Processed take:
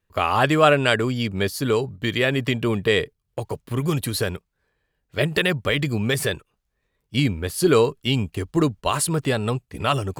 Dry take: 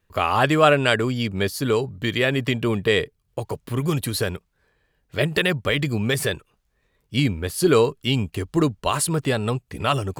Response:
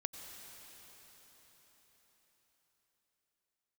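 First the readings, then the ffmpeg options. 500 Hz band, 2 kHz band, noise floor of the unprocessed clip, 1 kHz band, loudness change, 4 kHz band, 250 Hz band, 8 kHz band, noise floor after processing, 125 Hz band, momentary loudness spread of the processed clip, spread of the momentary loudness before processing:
0.0 dB, 0.0 dB, −70 dBFS, 0.0 dB, 0.0 dB, 0.0 dB, 0.0 dB, 0.0 dB, −75 dBFS, 0.0 dB, 10 LU, 10 LU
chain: -af "agate=range=-6dB:threshold=-34dB:ratio=16:detection=peak"

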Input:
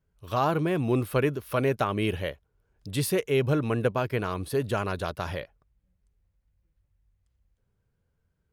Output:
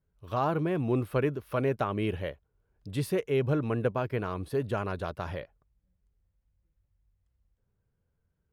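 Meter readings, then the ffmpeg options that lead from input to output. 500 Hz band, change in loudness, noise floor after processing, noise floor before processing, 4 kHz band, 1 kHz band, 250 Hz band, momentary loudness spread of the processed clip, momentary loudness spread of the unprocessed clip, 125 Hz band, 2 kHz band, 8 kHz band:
−2.5 dB, −3.0 dB, −78 dBFS, −76 dBFS, −8.0 dB, −3.5 dB, −2.5 dB, 9 LU, 9 LU, −2.5 dB, −5.5 dB, −11.5 dB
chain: -af "highshelf=frequency=3000:gain=-10,volume=-2.5dB"

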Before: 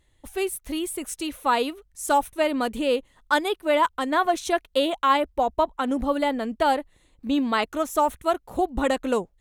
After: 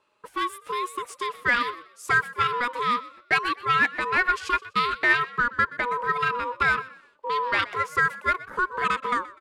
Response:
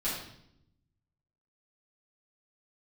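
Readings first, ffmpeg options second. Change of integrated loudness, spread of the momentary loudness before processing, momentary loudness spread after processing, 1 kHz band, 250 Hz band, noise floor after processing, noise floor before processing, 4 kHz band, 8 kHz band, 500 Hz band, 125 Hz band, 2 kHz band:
0.0 dB, 7 LU, 9 LU, −0.5 dB, −13.0 dB, −58 dBFS, −64 dBFS, −1.5 dB, −9.0 dB, −10.0 dB, can't be measured, +8.5 dB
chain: -filter_complex "[0:a]highpass=frequency=130:width=0.5412,highpass=frequency=130:width=1.3066,aeval=exprs='val(0)*sin(2*PI*730*n/s)':channel_layout=same,bass=frequency=250:gain=-10,treble=frequency=4000:gain=-1,acrossover=split=720|1100[link_01][link_02][link_03];[link_01]acompressor=threshold=-42dB:ratio=6[link_04];[link_02]alimiter=level_in=13dB:limit=-24dB:level=0:latency=1,volume=-13dB[link_05];[link_03]aemphasis=mode=reproduction:type=75fm[link_06];[link_04][link_05][link_06]amix=inputs=3:normalize=0,aeval=exprs='0.168*(cos(1*acos(clip(val(0)/0.168,-1,1)))-cos(1*PI/2))+0.00266*(cos(7*acos(clip(val(0)/0.168,-1,1)))-cos(7*PI/2))':channel_layout=same,asplit=2[link_07][link_08];[link_08]asplit=3[link_09][link_10][link_11];[link_09]adelay=124,afreqshift=55,volume=-18.5dB[link_12];[link_10]adelay=248,afreqshift=110,volume=-28.4dB[link_13];[link_11]adelay=372,afreqshift=165,volume=-38.3dB[link_14];[link_12][link_13][link_14]amix=inputs=3:normalize=0[link_15];[link_07][link_15]amix=inputs=2:normalize=0,volume=7.5dB"

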